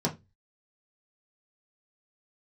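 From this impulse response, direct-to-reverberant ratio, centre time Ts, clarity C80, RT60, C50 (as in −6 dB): −3.5 dB, 12 ms, 25.0 dB, 0.20 s, 16.0 dB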